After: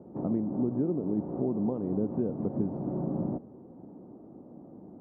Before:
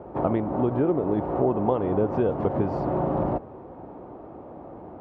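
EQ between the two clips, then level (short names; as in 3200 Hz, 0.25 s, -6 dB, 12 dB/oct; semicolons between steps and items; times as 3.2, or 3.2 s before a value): band-pass 210 Hz, Q 1.9; 0.0 dB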